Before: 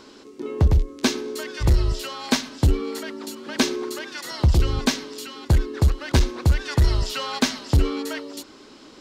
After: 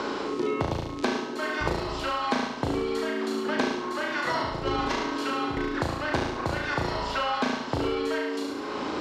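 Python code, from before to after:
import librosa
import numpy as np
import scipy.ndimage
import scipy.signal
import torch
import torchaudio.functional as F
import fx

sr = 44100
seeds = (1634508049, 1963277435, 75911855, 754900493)

y = fx.over_compress(x, sr, threshold_db=-23.0, ratio=-0.5, at=(4.27, 5.57))
y = fx.bandpass_q(y, sr, hz=840.0, q=0.74)
y = fx.doubler(y, sr, ms=36.0, db=-2.0)
y = fx.echo_feedback(y, sr, ms=71, feedback_pct=42, wet_db=-3.5)
y = fx.band_squash(y, sr, depth_pct=100)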